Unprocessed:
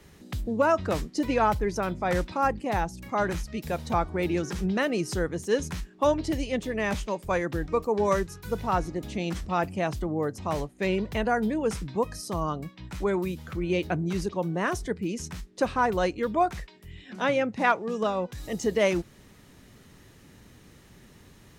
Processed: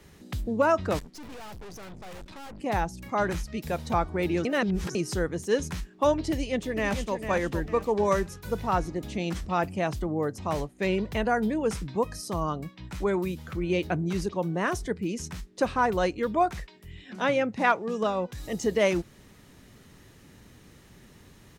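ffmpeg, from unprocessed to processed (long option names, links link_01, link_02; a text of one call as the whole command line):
ffmpeg -i in.wav -filter_complex "[0:a]asettb=1/sr,asplit=3[link_01][link_02][link_03];[link_01]atrim=end=0.994[link_04];[link_02]atrim=start=0.99:end=2.59,asetpts=PTS-STARTPTS,afade=type=in:duration=0.004:curve=qsin,afade=type=out:start_time=1.596:duration=0.004:curve=qsin,aeval=exprs='(tanh(126*val(0)+0.75)-tanh(0.75))/126':channel_layout=same[link_05];[link_03]atrim=start=2.586[link_06];[link_04][link_05]acrossfade=duration=0.004:curve1=hsin:curve2=qsin[link_07];[link_07][link_06]acrossfade=duration=0.004:curve1=qsin:curve2=hsin,asplit=2[link_08][link_09];[link_09]afade=type=in:start_time=6.31:duration=0.01,afade=type=out:start_time=7.15:duration=0.01,aecho=0:1:450|900|1350|1800:0.375837|0.150335|0.060134|0.0240536[link_10];[link_08][link_10]amix=inputs=2:normalize=0,asplit=3[link_11][link_12][link_13];[link_11]atrim=end=4.452[link_14];[link_12]atrim=start=4.448:end=4.952,asetpts=PTS-STARTPTS,areverse[link_15];[link_13]atrim=start=4.948[link_16];[link_14][link_15]acrossfade=duration=0.004:curve1=hsin:curve2=hsin[link_17];[link_17][link_16]acrossfade=duration=0.004:curve1=hsin:curve2=hsin" out.wav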